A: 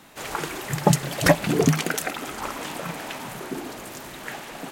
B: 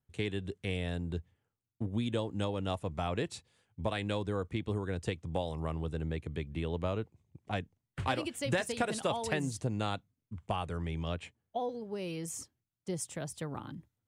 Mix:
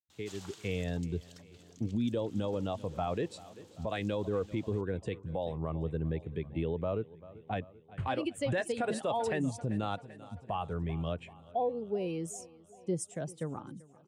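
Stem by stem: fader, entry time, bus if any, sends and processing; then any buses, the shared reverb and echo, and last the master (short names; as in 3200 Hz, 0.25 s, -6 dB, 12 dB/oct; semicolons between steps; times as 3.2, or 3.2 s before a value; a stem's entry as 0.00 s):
-17.5 dB, 0.10 s, no send, no echo send, band shelf 4900 Hz +12 dB; compressor 6:1, threshold -26 dBFS, peak gain reduction 16 dB; auto duck -13 dB, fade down 1.45 s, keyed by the second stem
+0.5 dB, 0.00 s, no send, echo send -22 dB, AGC gain up to 7.5 dB; spectral expander 1.5:1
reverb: off
echo: feedback echo 0.389 s, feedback 59%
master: low shelf 130 Hz -11 dB; limiter -23.5 dBFS, peak gain reduction 10.5 dB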